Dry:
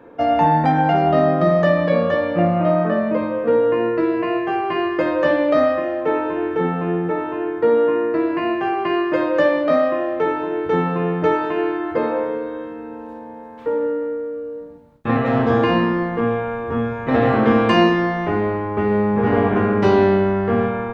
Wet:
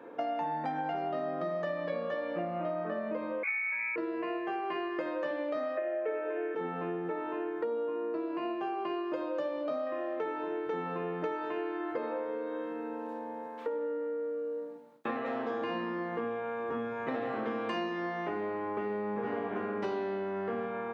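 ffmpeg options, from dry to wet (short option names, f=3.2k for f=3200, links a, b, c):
-filter_complex "[0:a]asettb=1/sr,asplit=3[a][b][c];[a]atrim=end=3.434[d];[b]atrim=start=3.43:end=3.96,asetpts=PTS-STARTPTS,afade=t=in:d=0.004:c=qsin,afade=t=out:st=0.526:d=0.004:c=qsin,lowpass=f=2.3k:t=q:w=0.5098,lowpass=f=2.3k:t=q:w=0.6013,lowpass=f=2.3k:t=q:w=0.9,lowpass=f=2.3k:t=q:w=2.563,afreqshift=-2700[e];[c]atrim=start=3.956[f];[d][e]acrossfade=d=0.004:c1=hsin:c2=qsin[g];[g][f]acrossfade=d=0.004:c1=qsin:c2=hsin,asettb=1/sr,asplit=3[h][i][j];[h]atrim=end=5.774[k];[i]atrim=start=5.77:end=6.55,asetpts=PTS-STARTPTS,afade=t=in:d=0.004:c=qsin,afade=t=out:st=0.776:d=0.004:c=qsin,highpass=f=260:w=0.5412,highpass=f=260:w=1.3066,equalizer=f=270:t=q:w=4:g=-5,equalizer=f=410:t=q:w=4:g=9,equalizer=f=630:t=q:w=4:g=10,equalizer=f=940:t=q:w=4:g=-8,equalizer=f=1.6k:t=q:w=4:g=8,equalizer=f=2.3k:t=q:w=4:g=8,lowpass=f=3.4k:w=0.5412,lowpass=f=3.4k:w=1.3066[l];[j]atrim=start=6.546[m];[k][l]acrossfade=d=0.004:c1=hsin:c2=qsin[n];[n][m]acrossfade=d=0.004:c1=qsin:c2=hsin,asettb=1/sr,asplit=3[o][p][q];[o]atrim=end=7.644[r];[p]atrim=start=7.64:end=9.87,asetpts=PTS-STARTPTS,afade=t=in:d=0.004:c=qsin,afade=t=out:st=2.226:d=0.004:c=qsin,equalizer=f=1.9k:w=2.9:g=-11[s];[q]atrim=start=9.866[t];[r][s]acrossfade=d=0.004:c1=hsin:c2=qsin[u];[u][t]acrossfade=d=0.004:c1=qsin:c2=hsin,asettb=1/sr,asplit=3[v][w][x];[v]atrim=end=13.464[y];[w]atrim=start=13.46:end=15.62,asetpts=PTS-STARTPTS,afade=t=in:d=0.004:c=qsin,afade=t=out:st=2.156:d=0.004:c=qsin,highpass=200[z];[x]atrim=start=15.616[aa];[y][z]acrossfade=d=0.004:c1=hsin:c2=qsin[ab];[ab][aa]acrossfade=d=0.004:c1=qsin:c2=hsin,highpass=260,acompressor=threshold=-29dB:ratio=6,volume=-3.5dB"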